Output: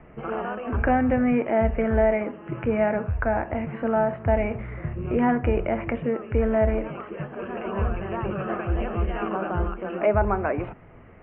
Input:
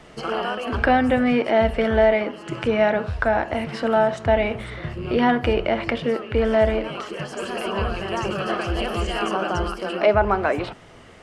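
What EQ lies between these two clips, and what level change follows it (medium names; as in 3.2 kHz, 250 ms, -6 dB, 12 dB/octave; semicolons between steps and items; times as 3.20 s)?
elliptic low-pass 2.5 kHz, stop band 60 dB; distance through air 230 m; bass shelf 240 Hz +7.5 dB; -4.0 dB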